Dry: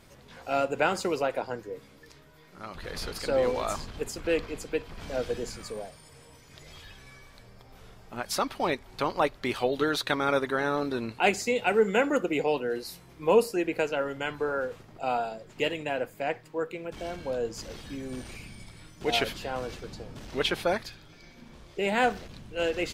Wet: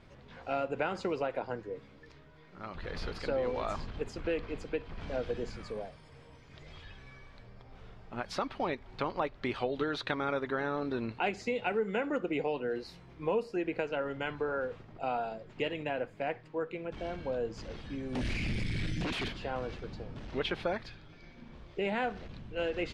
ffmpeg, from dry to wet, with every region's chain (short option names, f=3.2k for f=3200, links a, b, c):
-filter_complex "[0:a]asettb=1/sr,asplit=3[a][b][c];[a]atrim=end=18.154[d];[b]atrim=start=18.15:end=19.28,asetpts=PTS-STARTPTS,afade=t=in:d=0.004:c=qsin,afade=t=out:st=1.126:d=0.004:c=qsin,asuperstop=centerf=770:order=12:qfactor=0.61,acompressor=threshold=-43dB:ratio=6:attack=3.2:release=140:knee=1:detection=peak,aeval=exprs='0.0422*sin(PI/2*7.94*val(0)/0.0422)':c=same[e];[c]atrim=start=19.276[f];[d][e]acrossfade=d=0.004:c1=hsin:c2=qsin[g];[g][f]acrossfade=d=0.004:c1=qsin:c2=hsin,lowpass=3.5k,lowshelf=f=190:g=3.5,acompressor=threshold=-27dB:ratio=3,volume=-2.5dB"